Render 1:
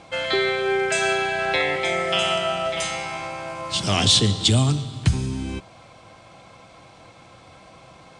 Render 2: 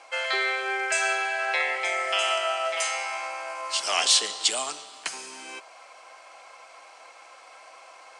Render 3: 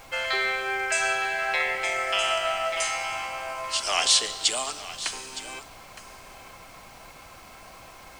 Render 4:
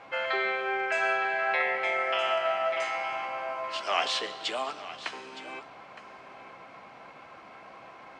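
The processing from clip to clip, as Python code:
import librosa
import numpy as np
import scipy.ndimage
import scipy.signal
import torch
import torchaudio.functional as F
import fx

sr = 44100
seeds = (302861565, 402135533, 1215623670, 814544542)

y1 = scipy.signal.sosfilt(scipy.signal.bessel(4, 810.0, 'highpass', norm='mag', fs=sr, output='sos'), x)
y1 = fx.peak_eq(y1, sr, hz=3600.0, db=-10.0, octaves=0.31)
y1 = fx.rider(y1, sr, range_db=3, speed_s=2.0)
y2 = fx.dmg_noise_colour(y1, sr, seeds[0], colour='pink', level_db=-51.0)
y2 = y2 + 10.0 ** (-14.5 / 20.0) * np.pad(y2, (int(915 * sr / 1000.0), 0))[:len(y2)]
y3 = fx.bandpass_edges(y2, sr, low_hz=190.0, high_hz=2300.0)
y3 = fx.doubler(y3, sr, ms=15.0, db=-11.5)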